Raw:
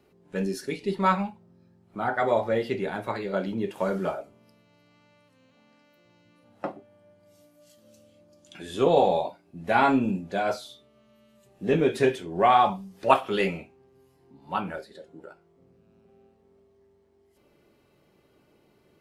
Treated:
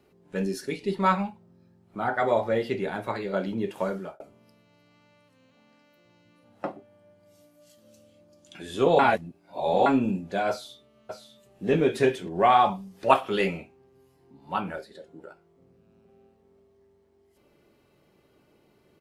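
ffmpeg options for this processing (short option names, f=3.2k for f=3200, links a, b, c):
-filter_complex "[0:a]asplit=2[a][b];[b]afade=t=in:st=10.49:d=0.01,afade=t=out:st=11.68:d=0.01,aecho=0:1:600|1200:0.375837|0.0375837[c];[a][c]amix=inputs=2:normalize=0,asplit=4[d][e][f][g];[d]atrim=end=4.2,asetpts=PTS-STARTPTS,afade=t=out:st=3.79:d=0.41[h];[e]atrim=start=4.2:end=8.992,asetpts=PTS-STARTPTS,afade=t=in:d=0.004:c=hsin[i];[f]atrim=start=8.988:end=9.862,asetpts=PTS-STARTPTS,areverse[j];[g]atrim=start=9.858[k];[h][i]concat=n=2:v=0:a=1[l];[l][j]acrossfade=d=0.004:c1=hsin:c2=hsin[m];[m][k]acrossfade=d=0.004:c1=hsin:c2=hsin"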